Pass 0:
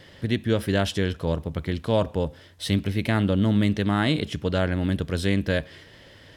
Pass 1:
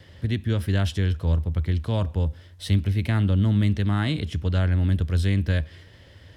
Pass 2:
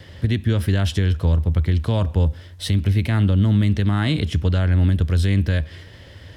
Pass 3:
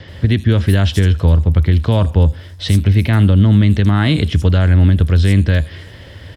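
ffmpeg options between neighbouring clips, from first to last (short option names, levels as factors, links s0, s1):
-filter_complex "[0:a]equalizer=f=77:w=1.3:g=14.5,acrossover=split=380|690|2900[s0][s1][s2][s3];[s1]acompressor=threshold=0.01:ratio=6[s4];[s0][s4][s2][s3]amix=inputs=4:normalize=0,volume=0.631"
-af "alimiter=limit=0.141:level=0:latency=1:release=139,volume=2.24"
-filter_complex "[0:a]acrossover=split=5900[s0][s1];[s1]adelay=80[s2];[s0][s2]amix=inputs=2:normalize=0,volume=2.11"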